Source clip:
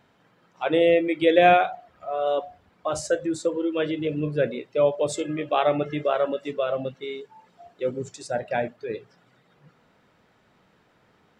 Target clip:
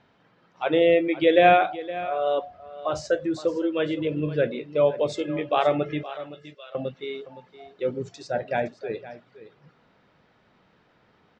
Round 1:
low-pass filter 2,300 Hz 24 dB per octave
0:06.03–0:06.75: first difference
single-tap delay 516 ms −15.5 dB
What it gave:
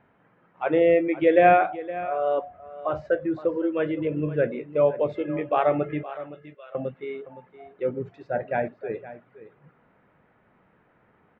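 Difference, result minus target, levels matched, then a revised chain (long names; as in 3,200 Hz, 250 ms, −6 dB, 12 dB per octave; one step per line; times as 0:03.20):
4,000 Hz band −12.5 dB
low-pass filter 5,600 Hz 24 dB per octave
0:06.03–0:06.75: first difference
single-tap delay 516 ms −15.5 dB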